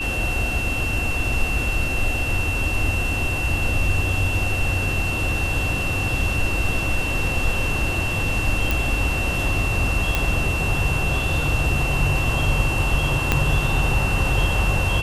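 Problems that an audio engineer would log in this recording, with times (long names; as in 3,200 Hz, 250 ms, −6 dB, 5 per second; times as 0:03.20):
whistle 2,700 Hz −25 dBFS
0:08.71: click
0:10.15: click −5 dBFS
0:13.32: click −3 dBFS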